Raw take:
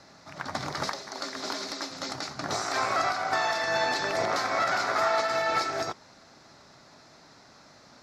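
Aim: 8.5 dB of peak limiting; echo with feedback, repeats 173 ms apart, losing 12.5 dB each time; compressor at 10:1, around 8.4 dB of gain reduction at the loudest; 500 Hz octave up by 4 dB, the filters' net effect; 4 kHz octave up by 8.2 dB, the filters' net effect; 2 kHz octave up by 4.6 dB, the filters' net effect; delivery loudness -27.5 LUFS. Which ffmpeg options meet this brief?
-af "equalizer=f=500:t=o:g=5.5,equalizer=f=2000:t=o:g=3.5,equalizer=f=4000:t=o:g=9,acompressor=threshold=0.0447:ratio=10,alimiter=limit=0.0708:level=0:latency=1,aecho=1:1:173|346|519:0.237|0.0569|0.0137,volume=1.68"

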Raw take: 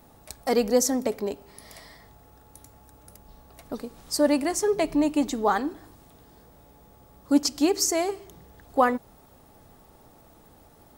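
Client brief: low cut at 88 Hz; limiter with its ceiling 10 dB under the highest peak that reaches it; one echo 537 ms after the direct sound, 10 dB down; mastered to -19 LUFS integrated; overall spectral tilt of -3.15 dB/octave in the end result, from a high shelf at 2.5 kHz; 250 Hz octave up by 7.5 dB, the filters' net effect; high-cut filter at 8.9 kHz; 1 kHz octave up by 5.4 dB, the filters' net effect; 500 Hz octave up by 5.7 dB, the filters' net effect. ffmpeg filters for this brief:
-af "highpass=88,lowpass=8900,equalizer=f=250:t=o:g=7.5,equalizer=f=500:t=o:g=3.5,equalizer=f=1000:t=o:g=4.5,highshelf=f=2500:g=5.5,alimiter=limit=0.266:level=0:latency=1,aecho=1:1:537:0.316,volume=1.58"

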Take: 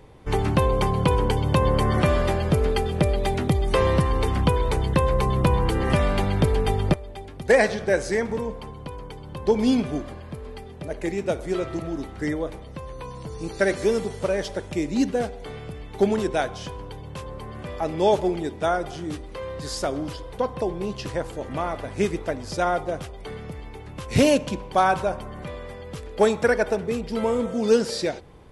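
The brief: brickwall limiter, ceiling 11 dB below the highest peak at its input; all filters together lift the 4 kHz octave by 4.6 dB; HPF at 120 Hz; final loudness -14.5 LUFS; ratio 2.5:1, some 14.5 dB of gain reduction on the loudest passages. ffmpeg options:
-af "highpass=120,equalizer=f=4000:t=o:g=6,acompressor=threshold=0.0158:ratio=2.5,volume=15.8,alimiter=limit=0.631:level=0:latency=1"

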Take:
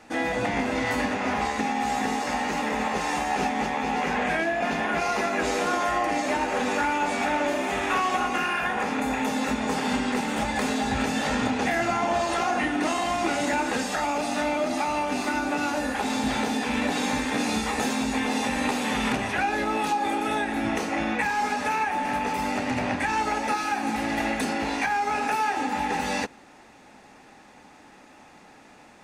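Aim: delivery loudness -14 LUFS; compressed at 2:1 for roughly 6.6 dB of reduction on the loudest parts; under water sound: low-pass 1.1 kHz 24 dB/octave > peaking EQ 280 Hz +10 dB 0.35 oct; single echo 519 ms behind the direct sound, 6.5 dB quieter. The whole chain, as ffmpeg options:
-af "acompressor=threshold=0.02:ratio=2,lowpass=f=1100:w=0.5412,lowpass=f=1100:w=1.3066,equalizer=f=280:t=o:w=0.35:g=10,aecho=1:1:519:0.473,volume=6.31"

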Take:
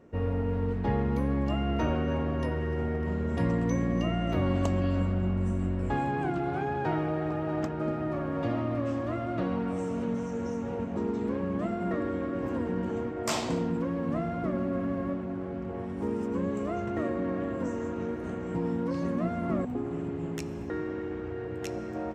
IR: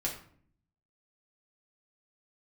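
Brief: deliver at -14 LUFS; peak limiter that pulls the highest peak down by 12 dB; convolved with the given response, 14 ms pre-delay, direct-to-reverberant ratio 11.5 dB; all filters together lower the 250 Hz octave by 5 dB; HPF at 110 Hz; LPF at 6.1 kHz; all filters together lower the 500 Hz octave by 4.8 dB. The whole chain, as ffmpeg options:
-filter_complex "[0:a]highpass=110,lowpass=6100,equalizer=f=250:t=o:g=-5,equalizer=f=500:t=o:g=-4.5,alimiter=level_in=1.88:limit=0.0631:level=0:latency=1,volume=0.531,asplit=2[s0][s1];[1:a]atrim=start_sample=2205,adelay=14[s2];[s1][s2]afir=irnorm=-1:irlink=0,volume=0.178[s3];[s0][s3]amix=inputs=2:normalize=0,volume=15.8"

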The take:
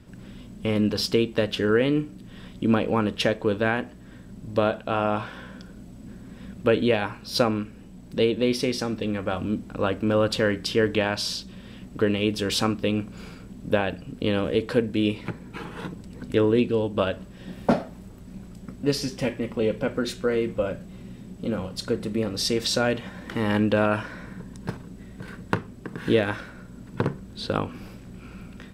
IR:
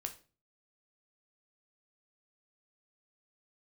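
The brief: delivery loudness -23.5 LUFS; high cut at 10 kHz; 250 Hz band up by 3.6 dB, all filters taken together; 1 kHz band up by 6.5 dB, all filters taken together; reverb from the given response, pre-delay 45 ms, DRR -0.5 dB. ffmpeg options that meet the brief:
-filter_complex "[0:a]lowpass=10000,equalizer=f=250:t=o:g=4,equalizer=f=1000:t=o:g=8.5,asplit=2[s0][s1];[1:a]atrim=start_sample=2205,adelay=45[s2];[s1][s2]afir=irnorm=-1:irlink=0,volume=1.26[s3];[s0][s3]amix=inputs=2:normalize=0,volume=0.631"

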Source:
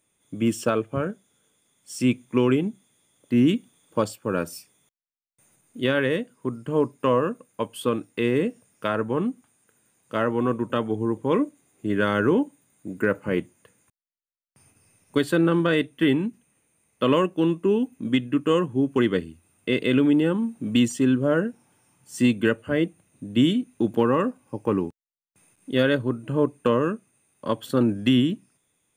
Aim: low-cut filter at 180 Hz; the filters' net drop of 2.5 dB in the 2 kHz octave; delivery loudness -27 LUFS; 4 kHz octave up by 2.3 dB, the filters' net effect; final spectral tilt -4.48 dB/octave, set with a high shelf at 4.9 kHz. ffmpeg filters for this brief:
-af "highpass=180,equalizer=f=2000:t=o:g=-5.5,equalizer=f=4000:t=o:g=3,highshelf=f=4900:g=6.5,volume=0.794"

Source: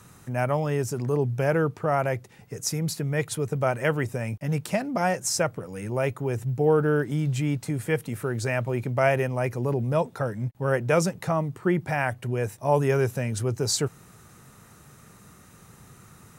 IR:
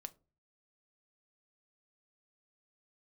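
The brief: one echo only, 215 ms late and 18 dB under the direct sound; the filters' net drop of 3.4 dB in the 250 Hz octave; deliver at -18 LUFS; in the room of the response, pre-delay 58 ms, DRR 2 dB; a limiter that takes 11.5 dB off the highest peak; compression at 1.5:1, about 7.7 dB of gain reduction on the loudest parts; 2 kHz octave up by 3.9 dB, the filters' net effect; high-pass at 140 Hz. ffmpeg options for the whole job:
-filter_complex "[0:a]highpass=140,equalizer=f=250:t=o:g=-4,equalizer=f=2000:t=o:g=5,acompressor=threshold=0.0126:ratio=1.5,alimiter=level_in=1.26:limit=0.0631:level=0:latency=1,volume=0.794,aecho=1:1:215:0.126,asplit=2[s0][s1];[1:a]atrim=start_sample=2205,adelay=58[s2];[s1][s2]afir=irnorm=-1:irlink=0,volume=1.41[s3];[s0][s3]amix=inputs=2:normalize=0,volume=6.68"

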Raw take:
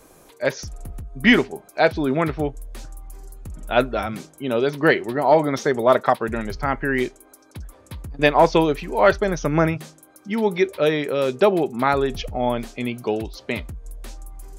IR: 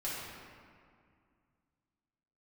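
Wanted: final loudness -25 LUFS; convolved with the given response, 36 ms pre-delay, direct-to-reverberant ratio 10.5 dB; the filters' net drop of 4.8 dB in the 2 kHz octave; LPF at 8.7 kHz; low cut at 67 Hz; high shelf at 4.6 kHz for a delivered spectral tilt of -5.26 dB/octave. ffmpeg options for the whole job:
-filter_complex "[0:a]highpass=67,lowpass=8700,equalizer=f=2000:t=o:g=-4.5,highshelf=f=4600:g=-8.5,asplit=2[s0][s1];[1:a]atrim=start_sample=2205,adelay=36[s2];[s1][s2]afir=irnorm=-1:irlink=0,volume=0.188[s3];[s0][s3]amix=inputs=2:normalize=0,volume=0.668"

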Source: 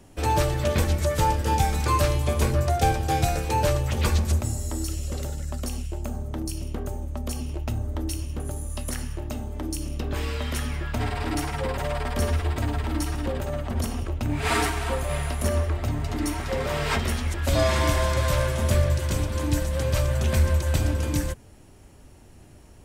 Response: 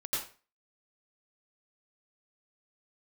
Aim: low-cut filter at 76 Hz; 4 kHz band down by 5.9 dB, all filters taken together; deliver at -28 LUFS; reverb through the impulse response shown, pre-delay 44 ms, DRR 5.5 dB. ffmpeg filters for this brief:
-filter_complex "[0:a]highpass=76,equalizer=f=4000:t=o:g=-8,asplit=2[s0][s1];[1:a]atrim=start_sample=2205,adelay=44[s2];[s1][s2]afir=irnorm=-1:irlink=0,volume=0.316[s3];[s0][s3]amix=inputs=2:normalize=0,volume=0.944"

